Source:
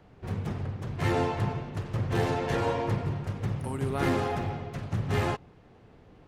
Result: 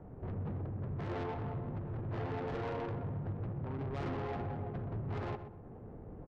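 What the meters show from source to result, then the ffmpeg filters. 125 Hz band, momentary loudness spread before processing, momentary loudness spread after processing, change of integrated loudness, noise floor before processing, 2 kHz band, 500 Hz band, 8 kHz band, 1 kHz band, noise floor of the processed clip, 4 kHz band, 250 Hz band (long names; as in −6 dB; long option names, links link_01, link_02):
−8.0 dB, 8 LU, 6 LU, −9.0 dB, −56 dBFS, −13.0 dB, −9.5 dB, below −20 dB, −10.5 dB, −50 dBFS, −16.0 dB, −9.0 dB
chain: -filter_complex "[0:a]lowpass=2200,acompressor=threshold=-46dB:ratio=2,asoftclip=type=tanh:threshold=-29dB,adynamicsmooth=sensitivity=7:basefreq=810,aeval=exprs='0.0299*(cos(1*acos(clip(val(0)/0.0299,-1,1)))-cos(1*PI/2))+0.00944*(cos(5*acos(clip(val(0)/0.0299,-1,1)))-cos(5*PI/2))':channel_layout=same,asplit=2[link_01][link_02];[link_02]adelay=125,lowpass=frequency=1400:poles=1,volume=-9dB,asplit=2[link_03][link_04];[link_04]adelay=125,lowpass=frequency=1400:poles=1,volume=0.42,asplit=2[link_05][link_06];[link_06]adelay=125,lowpass=frequency=1400:poles=1,volume=0.42,asplit=2[link_07][link_08];[link_08]adelay=125,lowpass=frequency=1400:poles=1,volume=0.42,asplit=2[link_09][link_10];[link_10]adelay=125,lowpass=frequency=1400:poles=1,volume=0.42[link_11];[link_01][link_03][link_05][link_07][link_09][link_11]amix=inputs=6:normalize=0,volume=-2dB"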